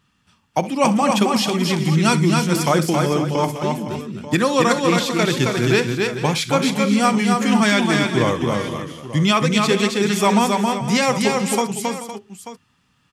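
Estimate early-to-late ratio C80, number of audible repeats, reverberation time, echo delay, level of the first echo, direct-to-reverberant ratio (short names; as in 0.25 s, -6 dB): none, 6, none, 65 ms, -16.0 dB, none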